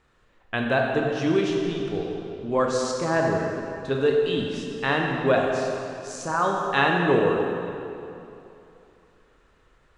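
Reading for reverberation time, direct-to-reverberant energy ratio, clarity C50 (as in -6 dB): 2.9 s, 0.0 dB, 1.0 dB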